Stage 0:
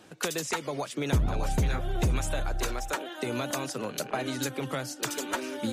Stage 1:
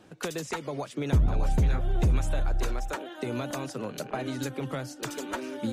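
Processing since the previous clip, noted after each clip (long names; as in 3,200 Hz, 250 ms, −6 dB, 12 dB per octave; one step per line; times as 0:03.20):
spectral tilt −1.5 dB per octave
level −2.5 dB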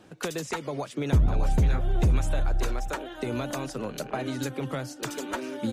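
slap from a distant wall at 220 metres, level −29 dB
level +1.5 dB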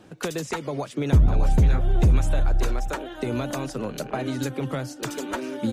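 low-shelf EQ 450 Hz +3 dB
level +1.5 dB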